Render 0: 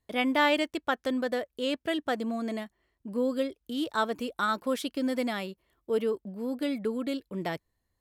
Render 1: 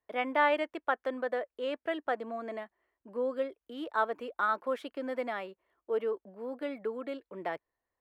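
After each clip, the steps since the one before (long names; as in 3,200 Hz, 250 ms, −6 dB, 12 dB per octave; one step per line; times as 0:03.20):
three-way crossover with the lows and the highs turned down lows −18 dB, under 380 Hz, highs −20 dB, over 2,300 Hz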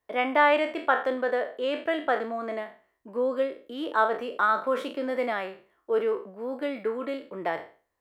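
peak hold with a decay on every bin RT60 0.38 s
level +5.5 dB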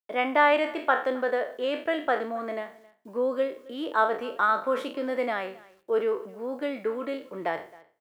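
bit reduction 11 bits
single-tap delay 267 ms −22.5 dB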